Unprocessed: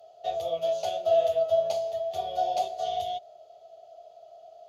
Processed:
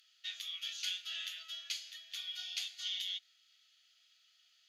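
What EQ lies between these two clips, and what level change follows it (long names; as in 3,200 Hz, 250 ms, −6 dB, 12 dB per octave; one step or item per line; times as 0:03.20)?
Butterworth high-pass 1,600 Hz 48 dB per octave
high-shelf EQ 4,700 Hz −9 dB
+8.0 dB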